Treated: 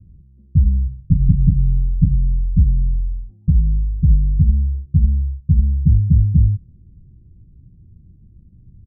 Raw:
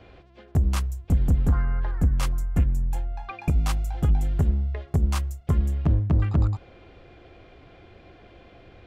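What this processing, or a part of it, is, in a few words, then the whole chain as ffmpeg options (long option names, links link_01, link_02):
the neighbour's flat through the wall: -filter_complex "[0:a]lowpass=frequency=180:width=0.5412,lowpass=frequency=180:width=1.3066,equalizer=frequency=180:width_type=o:width=0.77:gain=4,asplit=3[link_01][link_02][link_03];[link_01]afade=type=out:start_time=0.87:duration=0.02[link_04];[link_02]aecho=1:1:7:0.8,afade=type=in:start_time=0.87:duration=0.02,afade=type=out:start_time=2.14:duration=0.02[link_05];[link_03]afade=type=in:start_time=2.14:duration=0.02[link_06];[link_04][link_05][link_06]amix=inputs=3:normalize=0,volume=7.5dB"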